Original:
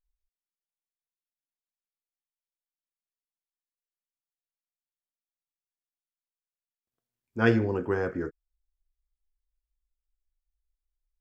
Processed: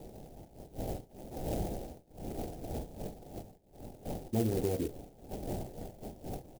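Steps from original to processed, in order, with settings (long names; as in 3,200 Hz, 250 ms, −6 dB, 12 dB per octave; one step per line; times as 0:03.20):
wind on the microphone 640 Hz −44 dBFS
low-shelf EQ 81 Hz +6 dB
downward compressor 2.5 to 1, threshold −33 dBFS, peak gain reduction 11.5 dB
repeating echo 64 ms, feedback 20%, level −10.5 dB
tempo change 1.7×
elliptic band-stop filter 790–3,300 Hz
converter with an unsteady clock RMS 0.072 ms
level +3 dB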